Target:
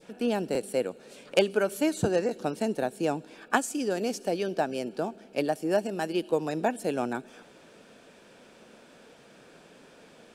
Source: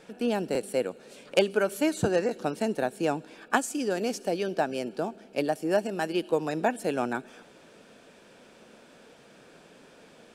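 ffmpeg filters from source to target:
ffmpeg -i in.wav -af "adynamicequalizer=threshold=0.00794:dfrequency=1600:dqfactor=0.77:tfrequency=1600:tqfactor=0.77:attack=5:release=100:ratio=0.375:range=2:mode=cutabove:tftype=bell" out.wav

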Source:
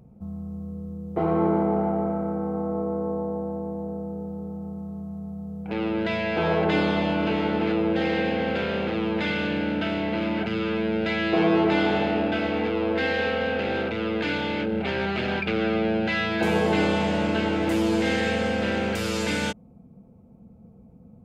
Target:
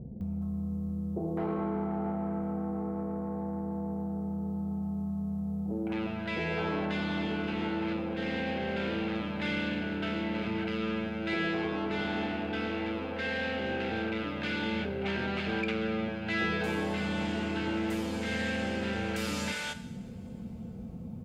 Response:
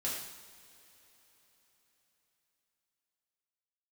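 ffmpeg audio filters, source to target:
-filter_complex "[0:a]acompressor=threshold=-45dB:ratio=2.5,asoftclip=type=tanh:threshold=-31dB,acrossover=split=630[link_01][link_02];[link_02]adelay=210[link_03];[link_01][link_03]amix=inputs=2:normalize=0,asplit=2[link_04][link_05];[1:a]atrim=start_sample=2205,highshelf=frequency=7900:gain=8.5[link_06];[link_05][link_06]afir=irnorm=-1:irlink=0,volume=-12dB[link_07];[link_04][link_07]amix=inputs=2:normalize=0,volume=7.5dB"

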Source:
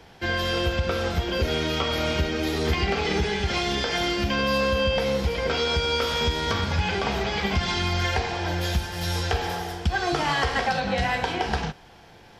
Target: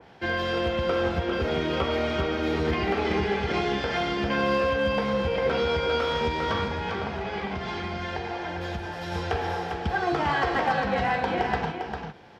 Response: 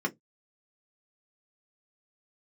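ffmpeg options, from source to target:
-filter_complex "[0:a]highpass=frequency=160:poles=1,aemphasis=mode=reproduction:type=75fm,asettb=1/sr,asplit=3[link_01][link_02][link_03];[link_01]atrim=end=6.644[link_04];[link_02]atrim=start=6.64:end=9.12,asetpts=PTS-STARTPTS,afade=type=in:duration=0.004:curve=qsin,afade=type=out:start_time=2.476:duration=0.004:curve=qsin,acompressor=threshold=-29dB:ratio=6[link_05];[link_03]atrim=start=9.116[link_06];[link_04][link_05]acrossfade=duration=0.004:curve1=hsin:curve2=qsin[link_07];[link_07][link_06]acrossfade=duration=0.004:curve1=qsin:curve2=hsin,asoftclip=type=hard:threshold=-17dB,aecho=1:1:400:0.531,adynamicequalizer=threshold=0.00708:dfrequency=2600:dqfactor=0.7:tfrequency=2600:tqfactor=0.7:attack=5:release=100:ratio=0.375:range=2:mode=cutabove:tftype=highshelf"

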